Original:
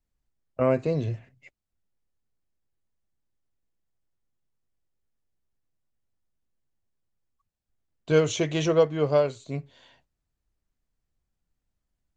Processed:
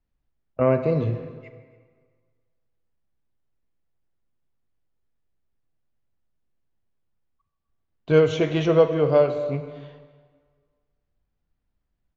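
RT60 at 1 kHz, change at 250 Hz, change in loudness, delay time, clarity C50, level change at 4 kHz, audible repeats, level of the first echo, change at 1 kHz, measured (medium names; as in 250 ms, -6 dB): 1.7 s, +3.5 dB, +3.0 dB, 280 ms, 9.0 dB, -1.0 dB, 1, -22.0 dB, +3.0 dB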